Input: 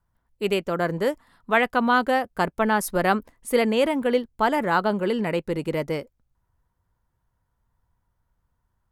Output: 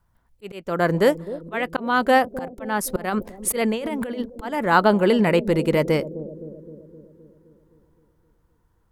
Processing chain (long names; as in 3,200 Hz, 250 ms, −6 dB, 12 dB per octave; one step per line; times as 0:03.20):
volume swells 416 ms
0:03.08–0:04.21: compressor whose output falls as the input rises −32 dBFS, ratio −1
bucket-brigade delay 259 ms, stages 1,024, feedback 62%, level −13.5 dB
level +6.5 dB